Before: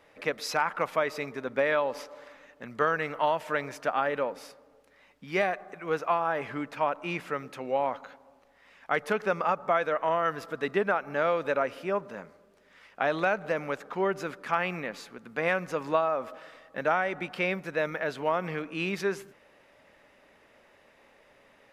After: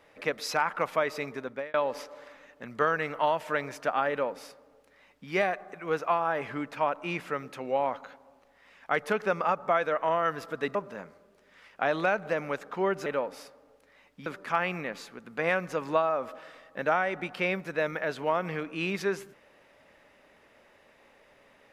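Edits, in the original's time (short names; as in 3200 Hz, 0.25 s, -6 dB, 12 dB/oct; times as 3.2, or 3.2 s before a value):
1.36–1.74 fade out
4.1–5.3 copy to 14.25
10.75–11.94 cut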